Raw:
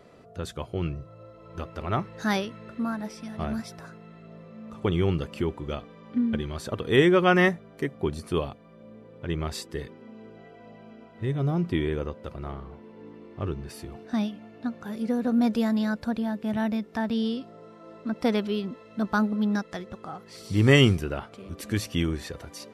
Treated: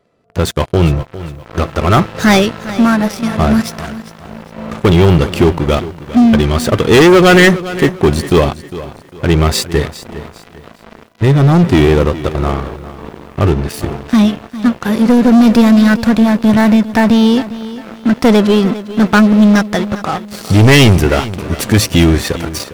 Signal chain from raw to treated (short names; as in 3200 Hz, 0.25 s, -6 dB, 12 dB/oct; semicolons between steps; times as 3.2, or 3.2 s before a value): sample leveller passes 5; lo-fi delay 0.404 s, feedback 35%, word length 7-bit, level -15 dB; gain +2.5 dB